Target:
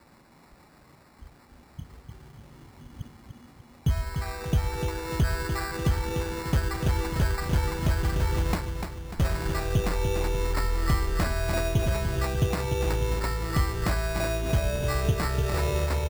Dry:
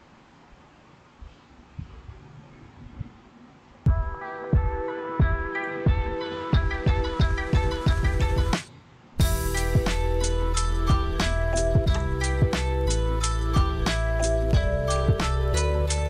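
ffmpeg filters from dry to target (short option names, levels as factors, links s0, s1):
-filter_complex "[0:a]asplit=2[s0][s1];[s1]adelay=296,lowpass=f=4400:p=1,volume=0.447,asplit=2[s2][s3];[s3]adelay=296,lowpass=f=4400:p=1,volume=0.53,asplit=2[s4][s5];[s5]adelay=296,lowpass=f=4400:p=1,volume=0.53,asplit=2[s6][s7];[s7]adelay=296,lowpass=f=4400:p=1,volume=0.53,asplit=2[s8][s9];[s9]adelay=296,lowpass=f=4400:p=1,volume=0.53,asplit=2[s10][s11];[s11]adelay=296,lowpass=f=4400:p=1,volume=0.53[s12];[s0][s2][s4][s6][s8][s10][s12]amix=inputs=7:normalize=0,acrusher=samples=14:mix=1:aa=0.000001,volume=0.668"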